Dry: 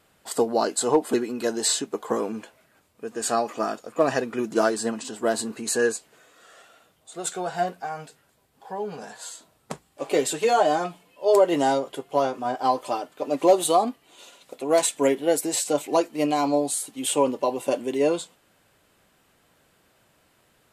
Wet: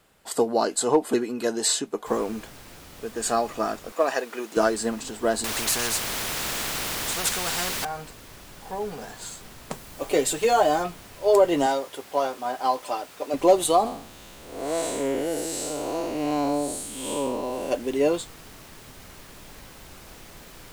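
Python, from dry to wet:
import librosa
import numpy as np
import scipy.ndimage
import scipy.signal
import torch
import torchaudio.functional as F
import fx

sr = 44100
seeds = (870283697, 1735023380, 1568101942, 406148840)

y = fx.noise_floor_step(x, sr, seeds[0], at_s=2.06, before_db=-69, after_db=-45, tilt_db=3.0)
y = fx.highpass(y, sr, hz=450.0, slope=12, at=(3.92, 4.57))
y = fx.spectral_comp(y, sr, ratio=4.0, at=(5.44, 7.85))
y = fx.high_shelf(y, sr, hz=9400.0, db=6.0, at=(9.72, 10.83))
y = fx.highpass(y, sr, hz=480.0, slope=6, at=(11.66, 13.34))
y = fx.spec_blur(y, sr, span_ms=229.0, at=(13.85, 17.7), fade=0.02)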